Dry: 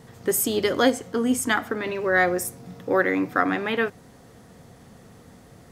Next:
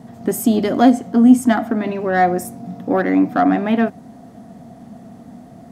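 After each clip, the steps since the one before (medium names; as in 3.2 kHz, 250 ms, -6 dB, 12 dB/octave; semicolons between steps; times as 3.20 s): saturation -11.5 dBFS, distortion -20 dB; small resonant body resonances 230/670 Hz, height 18 dB, ringing for 30 ms; trim -2.5 dB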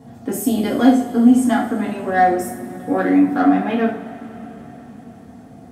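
two-slope reverb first 0.41 s, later 4.6 s, from -21 dB, DRR -4 dB; trim -6.5 dB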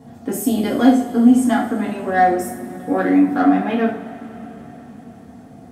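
hum notches 60/120 Hz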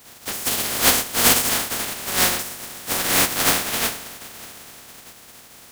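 spectral contrast reduction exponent 0.14; trim -4.5 dB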